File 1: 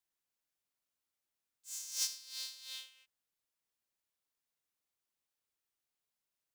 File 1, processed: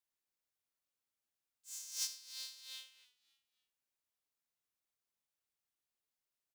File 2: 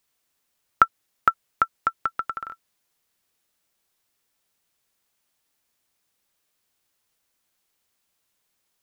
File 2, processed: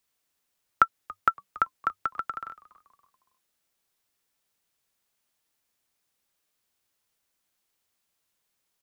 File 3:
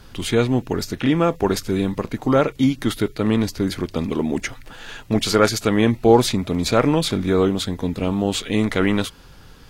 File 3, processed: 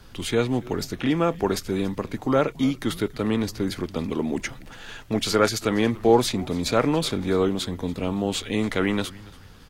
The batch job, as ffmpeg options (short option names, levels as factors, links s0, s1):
-filter_complex "[0:a]asplit=4[s0][s1][s2][s3];[s1]adelay=282,afreqshift=-100,volume=0.0891[s4];[s2]adelay=564,afreqshift=-200,volume=0.0339[s5];[s3]adelay=846,afreqshift=-300,volume=0.0129[s6];[s0][s4][s5][s6]amix=inputs=4:normalize=0,acrossover=split=220[s7][s8];[s7]asoftclip=type=tanh:threshold=0.0708[s9];[s9][s8]amix=inputs=2:normalize=0,volume=0.668"